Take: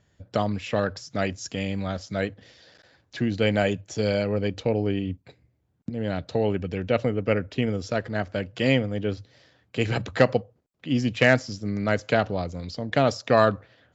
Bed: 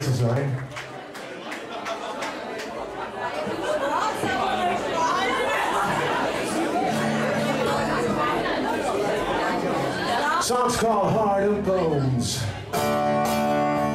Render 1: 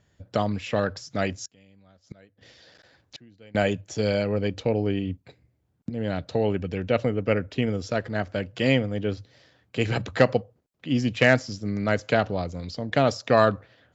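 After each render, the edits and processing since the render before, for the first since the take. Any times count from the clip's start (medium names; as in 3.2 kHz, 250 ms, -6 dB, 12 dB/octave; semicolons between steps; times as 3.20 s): 1.45–3.55 s: inverted gate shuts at -26 dBFS, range -27 dB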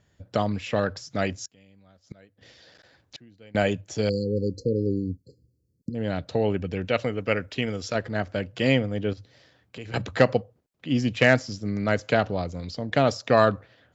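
4.09–5.95 s: brick-wall FIR band-stop 550–4100 Hz; 6.85–7.95 s: tilt shelf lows -4.5 dB, about 860 Hz; 9.13–9.94 s: compression 2.5:1, threshold -41 dBFS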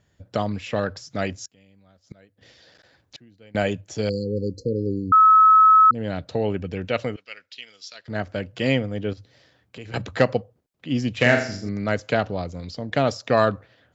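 5.12–5.91 s: bleep 1.29 kHz -9.5 dBFS; 7.16–8.08 s: band-pass filter 4.4 kHz, Q 1.9; 11.14–11.69 s: flutter echo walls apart 7.1 m, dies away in 0.48 s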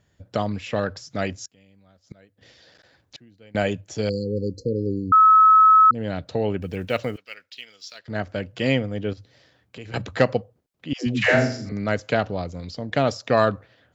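6.62–8.00 s: block-companded coder 7-bit; 10.93–11.72 s: phase dispersion lows, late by 138 ms, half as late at 460 Hz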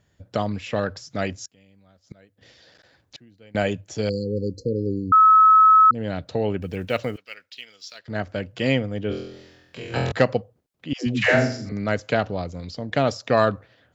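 9.08–10.12 s: flutter echo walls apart 4 m, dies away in 0.86 s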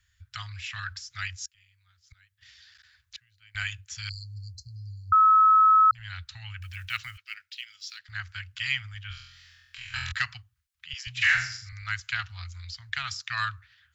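inverse Chebyshev band-stop 230–520 Hz, stop band 70 dB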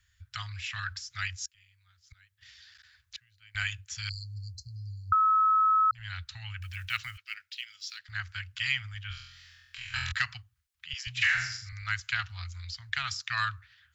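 compression, threshold -22 dBFS, peak gain reduction 5.5 dB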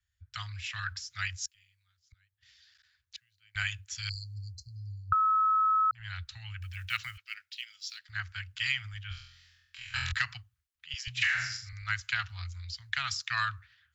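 compression, threshold -26 dBFS, peak gain reduction 5.5 dB; three bands expanded up and down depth 40%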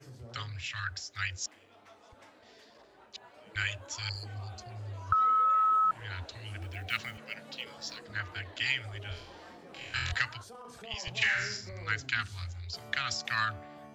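add bed -27 dB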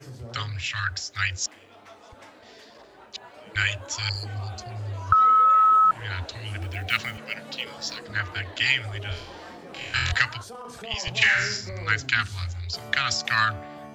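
trim +8.5 dB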